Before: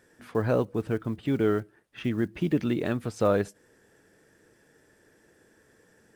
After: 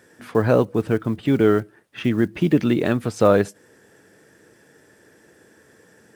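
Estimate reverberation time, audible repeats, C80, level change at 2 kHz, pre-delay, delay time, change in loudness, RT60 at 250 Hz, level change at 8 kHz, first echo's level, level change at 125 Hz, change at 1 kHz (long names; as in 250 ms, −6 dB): no reverb audible, no echo audible, no reverb audible, +8.0 dB, no reverb audible, no echo audible, +8.0 dB, no reverb audible, +8.0 dB, no echo audible, +7.0 dB, +8.0 dB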